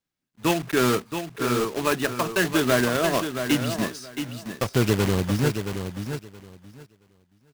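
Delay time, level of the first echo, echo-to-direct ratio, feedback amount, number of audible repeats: 673 ms, −8.0 dB, −8.0 dB, 18%, 2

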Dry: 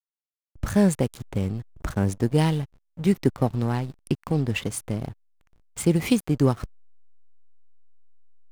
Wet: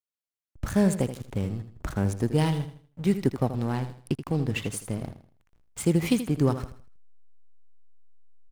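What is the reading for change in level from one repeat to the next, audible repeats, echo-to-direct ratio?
−9.5 dB, 3, −10.5 dB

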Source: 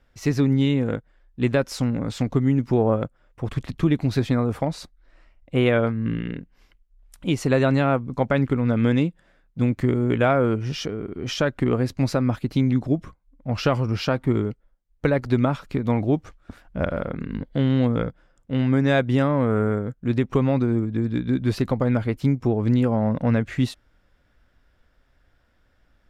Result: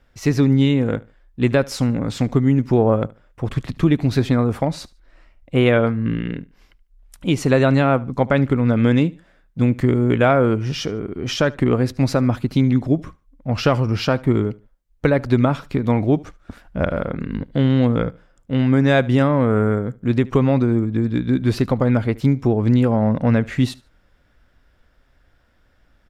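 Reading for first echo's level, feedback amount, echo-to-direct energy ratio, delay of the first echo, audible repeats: −22.5 dB, 28%, −22.0 dB, 74 ms, 2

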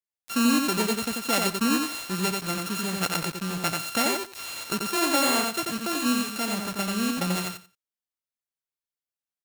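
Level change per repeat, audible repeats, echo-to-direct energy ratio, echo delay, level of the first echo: −15.0 dB, 3, −3.5 dB, 89 ms, −3.5 dB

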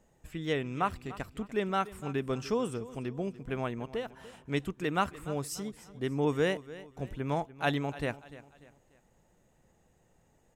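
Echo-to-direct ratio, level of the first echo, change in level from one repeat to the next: −16.5 dB, −17.0 dB, −8.0 dB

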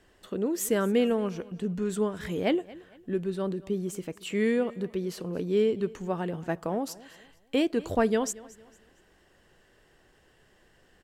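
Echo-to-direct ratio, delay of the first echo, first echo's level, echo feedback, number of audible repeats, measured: −20.0 dB, 228 ms, −20.5 dB, 35%, 2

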